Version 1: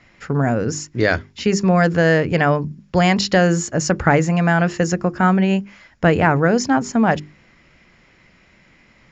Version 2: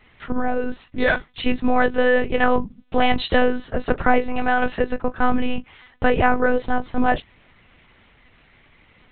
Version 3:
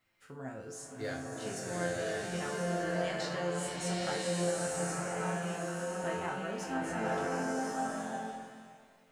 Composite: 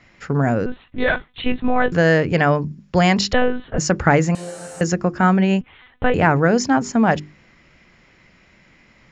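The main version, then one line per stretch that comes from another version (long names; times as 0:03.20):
1
0:00.66–0:01.92: punch in from 2
0:03.33–0:03.78: punch in from 2
0:04.35–0:04.81: punch in from 3
0:05.61–0:06.14: punch in from 2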